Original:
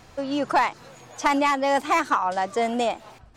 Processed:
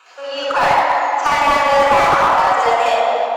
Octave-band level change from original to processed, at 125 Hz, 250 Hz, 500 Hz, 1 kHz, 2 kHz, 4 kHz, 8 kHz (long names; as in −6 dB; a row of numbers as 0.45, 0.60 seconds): can't be measured, −3.5 dB, +10.0 dB, +10.5 dB, +10.0 dB, +10.0 dB, +6.0 dB